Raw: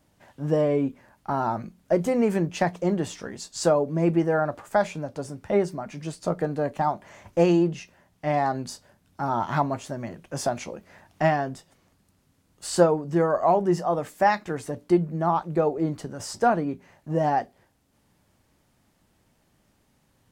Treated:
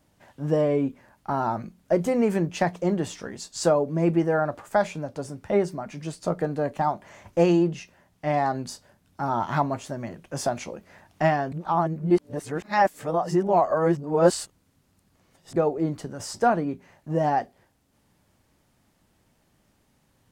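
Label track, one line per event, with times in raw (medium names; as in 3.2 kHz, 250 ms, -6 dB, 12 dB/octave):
11.520000	15.560000	reverse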